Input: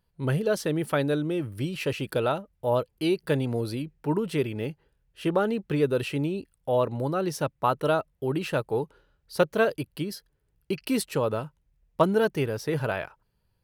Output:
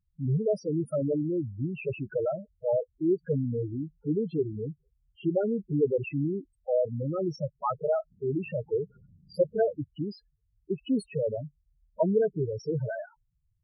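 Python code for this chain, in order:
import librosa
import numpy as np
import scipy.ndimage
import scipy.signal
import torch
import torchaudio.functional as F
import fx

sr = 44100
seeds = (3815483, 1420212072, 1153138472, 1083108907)

y = fx.spec_topn(x, sr, count=4)
y = fx.dmg_noise_band(y, sr, seeds[0], low_hz=81.0, high_hz=200.0, level_db=-59.0, at=(8.1, 9.78), fade=0.02)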